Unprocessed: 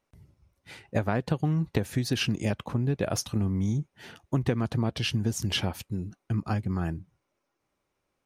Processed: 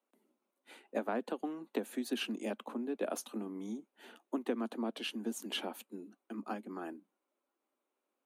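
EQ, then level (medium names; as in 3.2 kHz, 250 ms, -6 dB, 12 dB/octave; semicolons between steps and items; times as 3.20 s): steep high-pass 220 Hz 72 dB/octave; peaking EQ 2 kHz -5.5 dB 0.66 oct; peaking EQ 5.3 kHz -13.5 dB 0.53 oct; -5.5 dB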